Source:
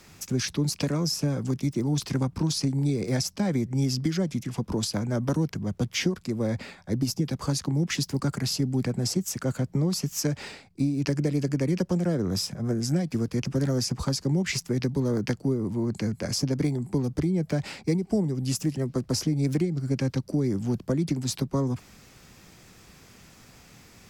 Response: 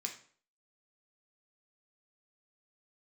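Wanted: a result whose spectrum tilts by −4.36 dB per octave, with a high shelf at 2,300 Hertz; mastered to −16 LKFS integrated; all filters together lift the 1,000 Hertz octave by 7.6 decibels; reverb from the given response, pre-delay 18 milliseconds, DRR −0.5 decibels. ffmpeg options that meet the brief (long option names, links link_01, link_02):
-filter_complex "[0:a]equalizer=frequency=1000:width_type=o:gain=8.5,highshelf=frequency=2300:gain=5.5,asplit=2[link_01][link_02];[1:a]atrim=start_sample=2205,adelay=18[link_03];[link_02][link_03]afir=irnorm=-1:irlink=0,volume=1dB[link_04];[link_01][link_04]amix=inputs=2:normalize=0,volume=7dB"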